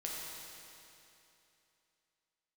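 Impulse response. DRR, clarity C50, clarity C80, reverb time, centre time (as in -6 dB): -4.0 dB, -2.0 dB, -0.5 dB, 2.9 s, 0.159 s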